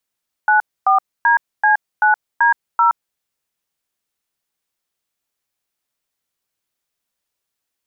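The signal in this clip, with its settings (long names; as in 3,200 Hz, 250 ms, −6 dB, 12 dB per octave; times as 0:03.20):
touch tones "94DC9D0", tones 121 ms, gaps 264 ms, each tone −12.5 dBFS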